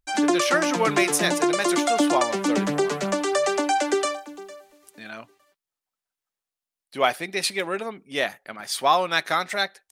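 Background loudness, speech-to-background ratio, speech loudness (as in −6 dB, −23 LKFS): −23.5 LKFS, −1.5 dB, −25.0 LKFS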